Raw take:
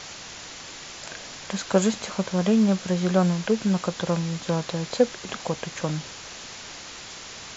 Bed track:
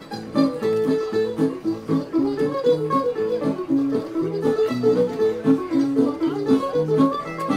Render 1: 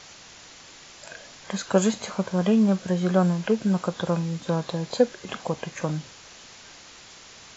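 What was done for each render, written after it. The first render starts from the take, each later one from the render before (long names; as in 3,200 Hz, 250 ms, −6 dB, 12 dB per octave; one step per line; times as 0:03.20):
noise reduction from a noise print 7 dB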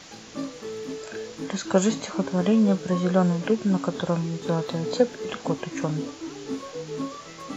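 mix in bed track −14 dB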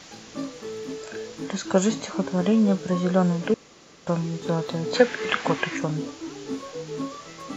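0:03.54–0:04.07: fill with room tone
0:04.94–0:05.77: parametric band 1,900 Hz +15 dB 1.9 octaves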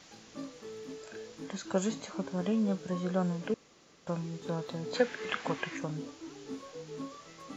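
level −10 dB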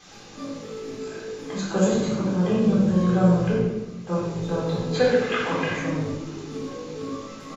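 echo with shifted repeats 86 ms, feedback 34%, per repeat −53 Hz, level −13 dB
rectangular room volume 500 cubic metres, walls mixed, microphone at 3.8 metres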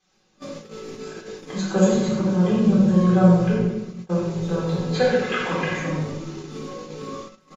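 noise gate −35 dBFS, range −21 dB
comb filter 5.4 ms, depth 54%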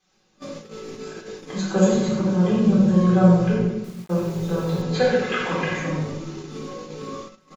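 0:03.84–0:04.82: bit-depth reduction 8 bits, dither none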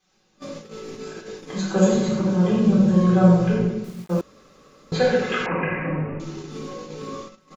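0:04.21–0:04.92: fill with room tone
0:05.46–0:06.20: bad sample-rate conversion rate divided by 8×, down none, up filtered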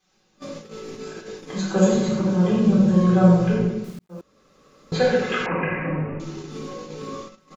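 0:03.99–0:04.96: fade in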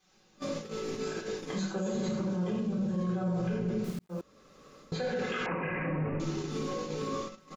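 reversed playback
downward compressor 6 to 1, threshold −26 dBFS, peak gain reduction 16 dB
reversed playback
brickwall limiter −24.5 dBFS, peak gain reduction 7 dB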